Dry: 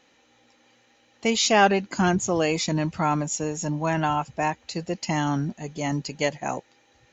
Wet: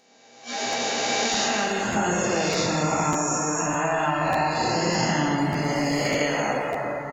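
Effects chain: reverse spectral sustain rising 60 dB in 2.76 s; level rider gain up to 10.5 dB; 5.38–6.06 s: hard clipper -12.5 dBFS, distortion -25 dB; plate-style reverb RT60 2.7 s, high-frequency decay 0.8×, DRR -1.5 dB; compression 2:1, threshold -25 dBFS, peak gain reduction 10.5 dB; 3.18–4.19 s: peaking EQ 80 Hz -13.5 dB 1.3 oct; speakerphone echo 400 ms, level -10 dB; spectral noise reduction 16 dB; 1.26–1.96 s: peaking EQ 650 Hz -4 dB 2.1 oct; crackling interface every 0.60 s, samples 512, repeat, from 0.72 s; trim -2.5 dB

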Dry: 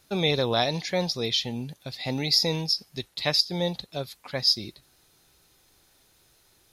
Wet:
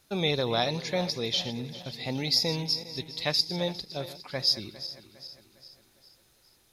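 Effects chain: backward echo that repeats 203 ms, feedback 68%, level -14 dB; trim -3 dB

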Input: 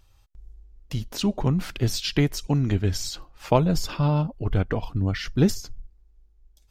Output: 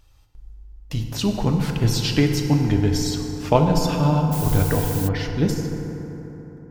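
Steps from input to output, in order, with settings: fade out at the end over 1.97 s; FDN reverb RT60 3.9 s, high-frequency decay 0.4×, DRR 2.5 dB; 4.31–5.07 s: added noise blue -34 dBFS; trim +2 dB

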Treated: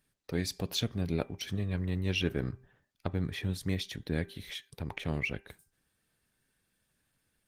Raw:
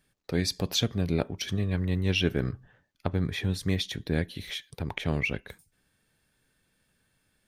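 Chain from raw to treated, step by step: treble shelf 5.3 kHz +2.5 dB; de-hum 394.5 Hz, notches 6; trim -4.5 dB; Opus 20 kbps 48 kHz

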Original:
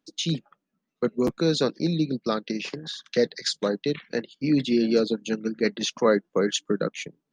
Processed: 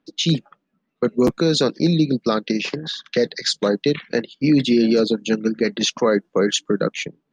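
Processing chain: peak limiter -16 dBFS, peak gain reduction 7 dB; level-controlled noise filter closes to 2.9 kHz, open at -21.5 dBFS; trim +8 dB

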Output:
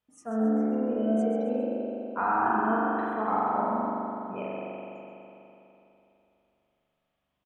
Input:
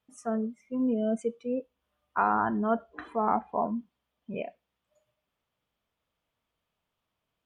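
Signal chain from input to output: frequency-shifting echo 134 ms, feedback 39%, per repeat +72 Hz, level -9 dB; spring tank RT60 3.1 s, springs 41 ms, chirp 75 ms, DRR -6 dB; trim -5 dB

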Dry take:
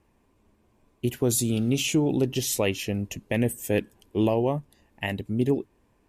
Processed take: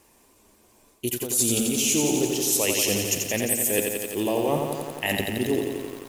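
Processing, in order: tone controls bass -10 dB, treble +14 dB; reverse; compression 12:1, threshold -30 dBFS, peak gain reduction 21 dB; reverse; bit-crushed delay 87 ms, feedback 80%, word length 9-bit, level -4.5 dB; trim +8.5 dB

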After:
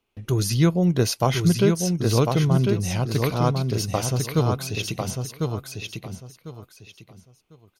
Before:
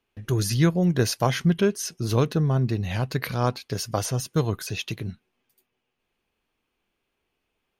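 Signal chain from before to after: peaking EQ 1.7 kHz -9.5 dB 0.23 oct; on a send: feedback delay 1049 ms, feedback 23%, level -4.5 dB; on the sum: trim +1.5 dB

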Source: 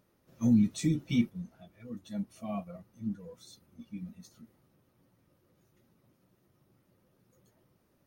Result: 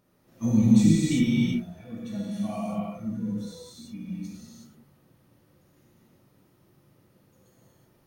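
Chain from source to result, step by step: gated-style reverb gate 400 ms flat, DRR -7 dB

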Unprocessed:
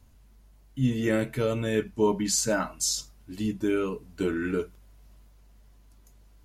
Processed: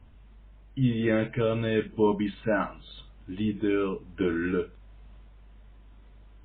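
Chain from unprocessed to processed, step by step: in parallel at -2.5 dB: compression 10:1, threshold -39 dBFS, peak gain reduction 21 dB; on the sum: MP3 16 kbps 8 kHz

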